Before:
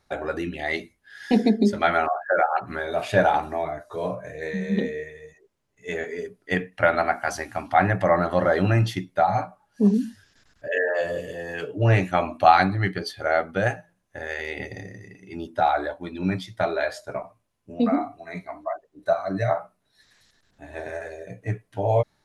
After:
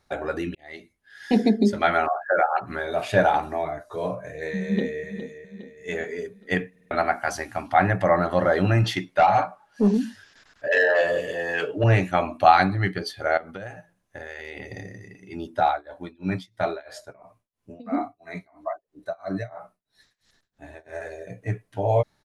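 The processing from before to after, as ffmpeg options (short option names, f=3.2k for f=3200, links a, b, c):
-filter_complex "[0:a]asplit=2[a][b];[b]afade=t=in:st=4.62:d=0.01,afade=t=out:st=5.04:d=0.01,aecho=0:1:410|820|1230|1640|2050:0.281838|0.140919|0.0704596|0.0352298|0.0176149[c];[a][c]amix=inputs=2:normalize=0,asettb=1/sr,asplit=3[d][e][f];[d]atrim=end=8.844[g];[e]atrim=start=8.84:end=11.84,asetpts=PTS-STARTPTS,afade=t=in:d=0.004:c=qsin,afade=t=out:st=2.996:d=0.004:c=qsin,asplit=2[h][i];[i]highpass=f=720:p=1,volume=14dB,asoftclip=type=tanh:threshold=-8.5dB[j];[h][j]amix=inputs=2:normalize=0,lowpass=f=3.5k:p=1,volume=-6dB[k];[f]atrim=start=11.836[l];[g][k]acrossfade=d=0.004:c1=hsin:c2=qsin[m];[m][l]acrossfade=d=0.004:c1=qsin:c2=hsin,asettb=1/sr,asplit=3[n][o][p];[n]atrim=end=13.374[q];[o]atrim=start=13.37:end=14.72,asetpts=PTS-STARTPTS,afade=t=in:d=0.004:c=qsin,afade=t=out:st=1.346:d=0.004:c=qsin,acompressor=threshold=-32dB:ratio=8:attack=3.2:release=140:knee=1:detection=peak[r];[p]atrim=start=14.716[s];[q][r]acrossfade=d=0.004:c1=hsin:c2=qsin[t];[t][s]acrossfade=d=0.004:c1=qsin:c2=hsin,asettb=1/sr,asplit=3[u][v][w];[u]atrim=end=15.674[x];[v]atrim=start=15.67:end=21.03,asetpts=PTS-STARTPTS,afade=t=in:d=0.004:c=qsin,afade=t=out:st=5.356:d=0.004:c=qsin,tremolo=f=3:d=0.96[y];[w]atrim=start=21.026[z];[x][y]acrossfade=d=0.004:c1=hsin:c2=qsin[aa];[aa][z]acrossfade=d=0.004:c1=qsin:c2=hsin,asplit=6[ab][ac][ad][ae][af][ag];[ab]atrim=end=0.55,asetpts=PTS-STARTPTS,afade=t=out:st=0.546:d=0.004:c=hsin[ah];[ac]atrim=start=0.55:end=6.762,asetpts=PTS-STARTPTS,afade=t=in:d=0.85[ai];[ad]atrim=start=6.708:end=6.762[aj];[ae]atrim=start=6.708:end=6.762[ak];[af]atrim=start=6.708:end=6.762[al];[ag]atrim=start=6.908[am];[ah][ai]concat=n=2:v=0:a=1[an];[an][aj]acrossfade=d=0.004:c1=hsin:c2=hsin[ao];[ao][ak]acrossfade=d=0.004:c1=hsin:c2=hsin[ap];[ap][al]acrossfade=d=0.004:c1=hsin:c2=hsin[aq];[aq][am]acrossfade=d=0.004:c1=hsin:c2=hsin"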